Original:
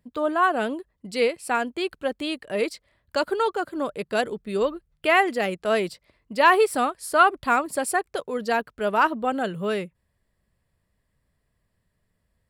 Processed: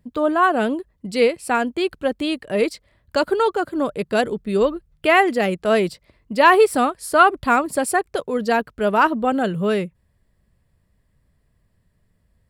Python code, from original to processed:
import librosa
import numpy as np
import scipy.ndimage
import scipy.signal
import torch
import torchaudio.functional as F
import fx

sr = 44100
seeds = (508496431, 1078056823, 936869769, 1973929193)

y = fx.low_shelf(x, sr, hz=340.0, db=7.0)
y = y * librosa.db_to_amplitude(3.0)